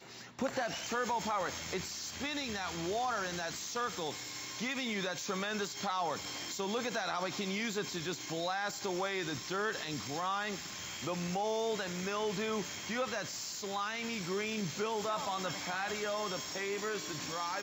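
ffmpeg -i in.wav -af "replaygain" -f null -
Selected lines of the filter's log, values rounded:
track_gain = +18.2 dB
track_peak = 0.051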